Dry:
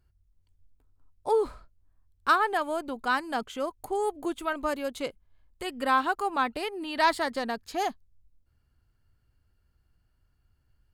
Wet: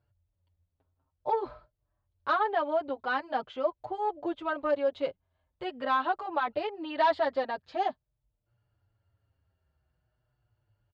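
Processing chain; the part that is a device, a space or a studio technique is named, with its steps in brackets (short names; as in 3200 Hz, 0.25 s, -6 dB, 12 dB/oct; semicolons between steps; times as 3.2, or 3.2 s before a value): barber-pole flanger into a guitar amplifier (endless flanger 6.6 ms -0.46 Hz; soft clip -20.5 dBFS, distortion -15 dB; speaker cabinet 75–3900 Hz, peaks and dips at 110 Hz +7 dB, 230 Hz -7 dB, 600 Hz +10 dB, 860 Hz +4 dB, 2300 Hz -3 dB)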